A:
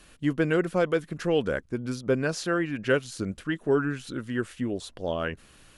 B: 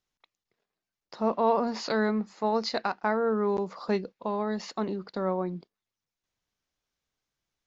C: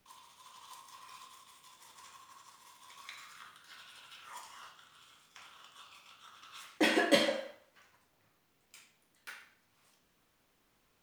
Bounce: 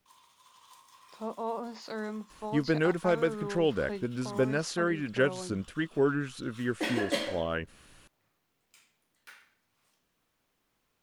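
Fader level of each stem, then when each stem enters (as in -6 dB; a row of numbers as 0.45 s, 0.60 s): -2.5 dB, -10.5 dB, -4.0 dB; 2.30 s, 0.00 s, 0.00 s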